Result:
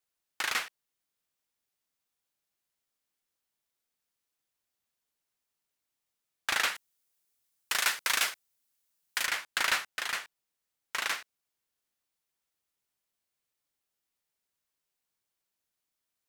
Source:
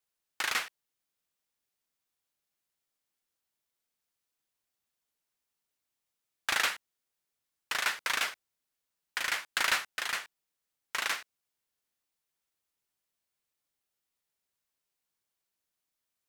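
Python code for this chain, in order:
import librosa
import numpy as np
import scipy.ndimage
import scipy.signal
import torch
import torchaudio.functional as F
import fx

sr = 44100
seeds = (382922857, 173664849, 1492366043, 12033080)

y = fx.high_shelf(x, sr, hz=4900.0, db=9.5, at=(6.75, 9.26))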